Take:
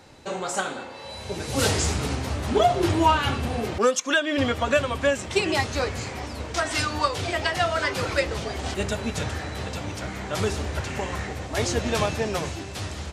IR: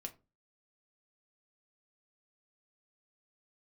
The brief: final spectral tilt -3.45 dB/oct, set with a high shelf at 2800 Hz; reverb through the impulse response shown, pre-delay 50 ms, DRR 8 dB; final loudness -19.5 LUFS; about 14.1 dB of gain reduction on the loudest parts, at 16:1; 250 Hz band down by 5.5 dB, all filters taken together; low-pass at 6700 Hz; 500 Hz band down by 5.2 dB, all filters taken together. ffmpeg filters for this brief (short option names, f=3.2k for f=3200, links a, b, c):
-filter_complex "[0:a]lowpass=6.7k,equalizer=f=250:t=o:g=-5.5,equalizer=f=500:t=o:g=-5.5,highshelf=f=2.8k:g=4,acompressor=threshold=-30dB:ratio=16,asplit=2[a][b];[1:a]atrim=start_sample=2205,adelay=50[c];[b][c]afir=irnorm=-1:irlink=0,volume=-4.5dB[d];[a][d]amix=inputs=2:normalize=0,volume=14dB"